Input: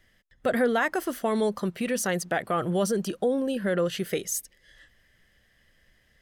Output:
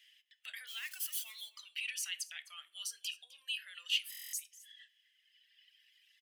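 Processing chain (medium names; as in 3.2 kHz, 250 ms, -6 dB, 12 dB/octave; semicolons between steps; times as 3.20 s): 0.67–1.41 s: zero-crossing glitches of -29.5 dBFS; reverb removal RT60 1.8 s; in parallel at 0 dB: compression, threshold -40 dBFS, peak gain reduction 18 dB; on the sum: peak limiter -22.5 dBFS, peak gain reduction 9 dB; ladder high-pass 2.5 kHz, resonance 65%; on a send: delay 257 ms -19.5 dB; on the sum: simulated room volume 200 m³, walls furnished, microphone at 0.43 m; buffer glitch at 4.10 s, samples 1024, times 9; trim +4.5 dB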